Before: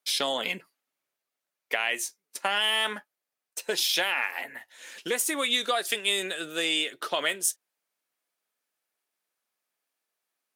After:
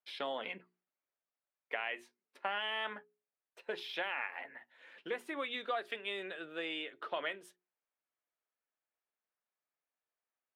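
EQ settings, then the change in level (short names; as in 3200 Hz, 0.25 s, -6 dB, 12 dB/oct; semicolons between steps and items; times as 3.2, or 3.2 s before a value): air absorption 490 m; low shelf 230 Hz -9 dB; notches 60/120/180/240/300/360/420 Hz; -5.5 dB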